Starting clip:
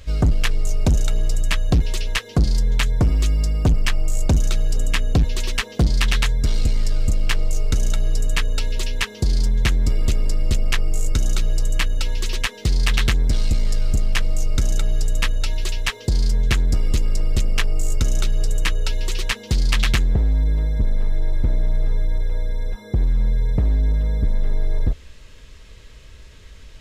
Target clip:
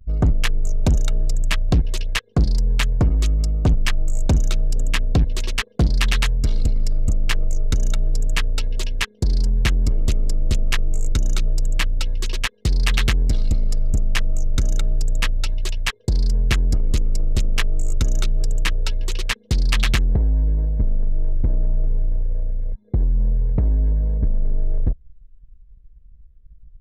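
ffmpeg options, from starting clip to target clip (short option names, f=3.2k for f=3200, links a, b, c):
-af "anlmdn=100"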